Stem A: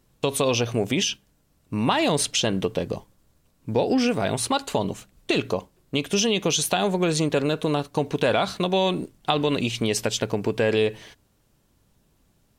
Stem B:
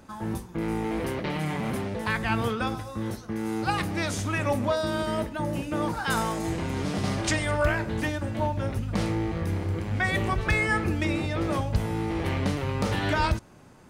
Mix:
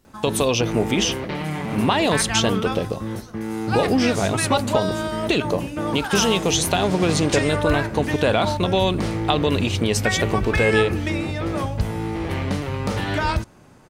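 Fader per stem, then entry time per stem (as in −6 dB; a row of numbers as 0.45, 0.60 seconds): +2.0, +2.5 decibels; 0.00, 0.05 seconds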